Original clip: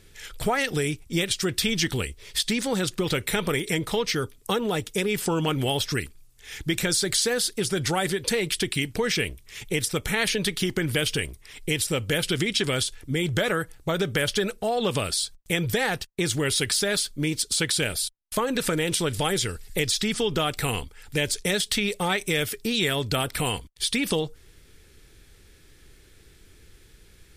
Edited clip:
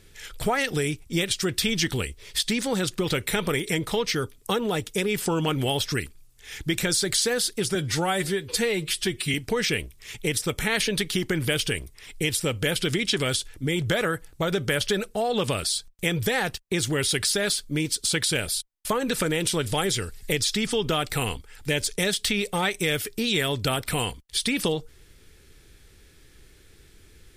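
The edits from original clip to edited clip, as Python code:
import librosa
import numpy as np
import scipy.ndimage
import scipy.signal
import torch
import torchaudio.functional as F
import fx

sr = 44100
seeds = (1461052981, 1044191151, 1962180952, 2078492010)

y = fx.edit(x, sr, fx.stretch_span(start_s=7.75, length_s=1.06, factor=1.5), tone=tone)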